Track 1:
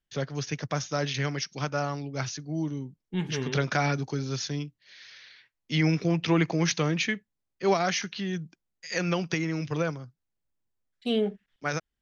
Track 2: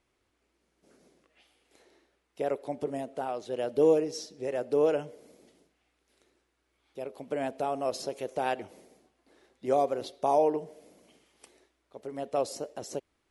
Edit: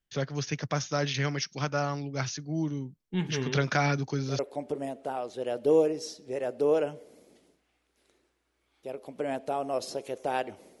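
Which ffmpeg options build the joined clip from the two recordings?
ffmpeg -i cue0.wav -i cue1.wav -filter_complex "[1:a]asplit=2[link_01][link_02];[0:a]apad=whole_dur=10.8,atrim=end=10.8,atrim=end=4.392[link_03];[link_02]atrim=start=2.508:end=8.92[link_04];[link_01]atrim=start=1.77:end=2.51,asetpts=PTS-STARTPTS,volume=-11dB,afade=type=in:duration=0.004:curve=hsin,afade=type=out:start_time=0.736:duration=0.004:curve=hsin,adelay=160965S[link_05];[link_03][link_04]acrossfade=duration=0.004:curve1=hsin:curve2=hsin[link_06];[link_06][link_05]amix=inputs=2:normalize=0" out.wav

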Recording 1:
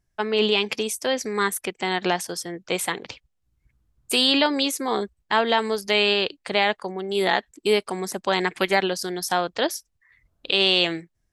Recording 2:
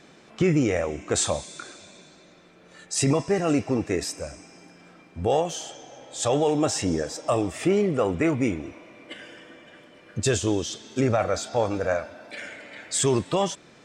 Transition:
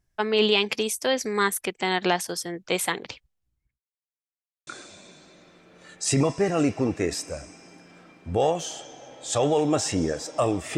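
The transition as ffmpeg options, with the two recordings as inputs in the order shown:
ffmpeg -i cue0.wav -i cue1.wav -filter_complex "[0:a]apad=whole_dur=10.77,atrim=end=10.77,asplit=2[link_01][link_02];[link_01]atrim=end=3.8,asetpts=PTS-STARTPTS,afade=type=out:start_time=2.9:duration=0.9:curve=qsin[link_03];[link_02]atrim=start=3.8:end=4.67,asetpts=PTS-STARTPTS,volume=0[link_04];[1:a]atrim=start=1.57:end=7.67,asetpts=PTS-STARTPTS,afade=type=in:duration=0.004:curve=hsin[link_05];[link_03][link_04][link_05]concat=n=3:v=0:a=1" out.wav

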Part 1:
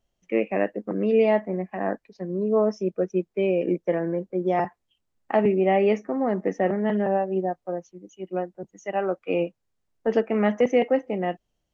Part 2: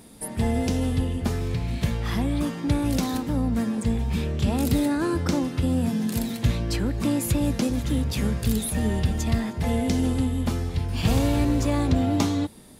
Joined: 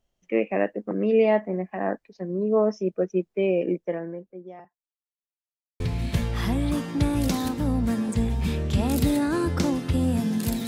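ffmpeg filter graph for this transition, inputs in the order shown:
ffmpeg -i cue0.wav -i cue1.wav -filter_complex "[0:a]apad=whole_dur=10.67,atrim=end=10.67,asplit=2[link_01][link_02];[link_01]atrim=end=4.99,asetpts=PTS-STARTPTS,afade=type=out:start_time=3.6:duration=1.39:curve=qua[link_03];[link_02]atrim=start=4.99:end=5.8,asetpts=PTS-STARTPTS,volume=0[link_04];[1:a]atrim=start=1.49:end=6.36,asetpts=PTS-STARTPTS,afade=type=in:duration=0.004:curve=hsin[link_05];[link_03][link_04][link_05]concat=n=3:v=0:a=1" out.wav

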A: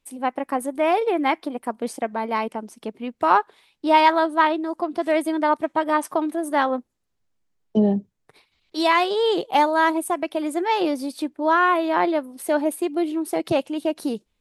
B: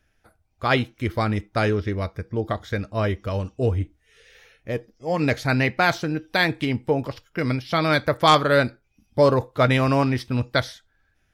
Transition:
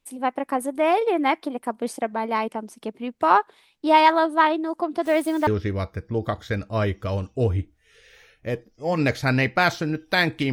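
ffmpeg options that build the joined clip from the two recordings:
ffmpeg -i cue0.wav -i cue1.wav -filter_complex "[0:a]asettb=1/sr,asplit=3[link_01][link_02][link_03];[link_01]atrim=end=5.054[link_04];[link_02]atrim=start=5.05:end=5.47,asetpts=PTS-STARTPTS,afade=type=in:duration=0.004:curve=qsin,afade=type=out:start_time=0.416:duration=0.004:curve=qsin,acrusher=bits=8:dc=4:mix=0:aa=0.000001[link_05];[link_03]atrim=start=5.466[link_06];[link_04][link_05]acrossfade=duration=0.004:curve1=hsin:curve2=qsin[link_07];[link_07][link_06]acrossfade=duration=0.004:curve1=qsin:curve2=hsin,apad=whole_dur=10.52,atrim=end=10.52,atrim=end=5.472[link_08];[1:a]atrim=start=1.688:end=6.74[link_09];[link_08][link_09]acrossfade=duration=0.004:curve1=hsin:curve2=hsin" out.wav

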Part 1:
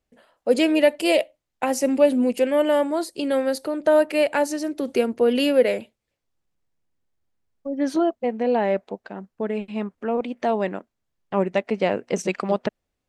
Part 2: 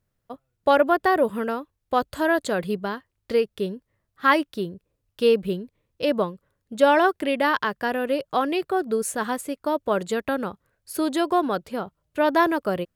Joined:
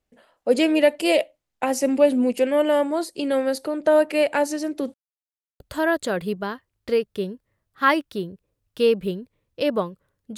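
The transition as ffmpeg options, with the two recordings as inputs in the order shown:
ffmpeg -i cue0.wav -i cue1.wav -filter_complex "[0:a]apad=whole_dur=10.37,atrim=end=10.37,asplit=2[link_01][link_02];[link_01]atrim=end=4.94,asetpts=PTS-STARTPTS,afade=type=out:start_time=4.936:duration=0.004:curve=hsin[link_03];[link_02]atrim=start=4.94:end=5.6,asetpts=PTS-STARTPTS,volume=0[link_04];[1:a]atrim=start=2.02:end=6.79,asetpts=PTS-STARTPTS,afade=type=in:duration=0.004:curve=hsin[link_05];[link_03][link_04][link_05]concat=n=3:v=0:a=1" out.wav

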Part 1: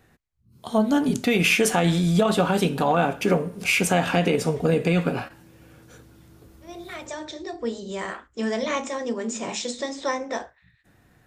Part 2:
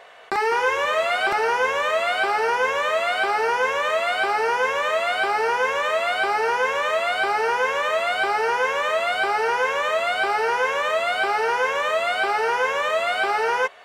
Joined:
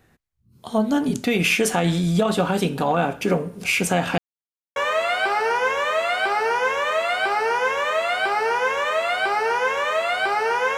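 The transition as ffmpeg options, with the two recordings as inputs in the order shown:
ffmpeg -i cue0.wav -i cue1.wav -filter_complex "[0:a]apad=whole_dur=10.77,atrim=end=10.77,asplit=2[link_01][link_02];[link_01]atrim=end=4.18,asetpts=PTS-STARTPTS,afade=type=out:start_time=4.176:duration=0.004:curve=hsin[link_03];[link_02]atrim=start=4.18:end=4.76,asetpts=PTS-STARTPTS,volume=0[link_04];[1:a]atrim=start=1.74:end=7.75,asetpts=PTS-STARTPTS,afade=type=in:duration=0.004:curve=hsin[link_05];[link_03][link_04][link_05]concat=n=3:v=0:a=1" out.wav

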